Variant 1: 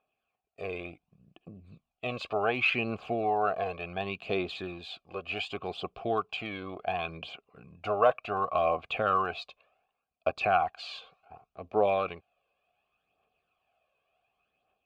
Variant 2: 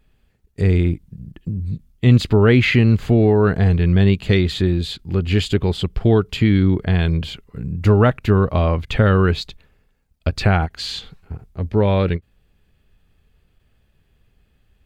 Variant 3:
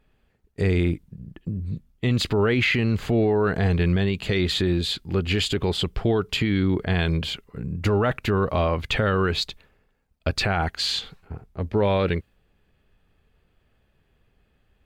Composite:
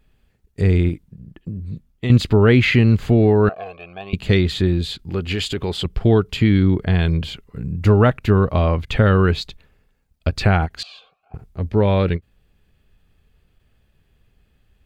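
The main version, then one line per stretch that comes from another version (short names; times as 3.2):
2
0.89–2.1 from 3
3.49–4.13 from 1
5.1–5.85 from 3
10.83–11.34 from 1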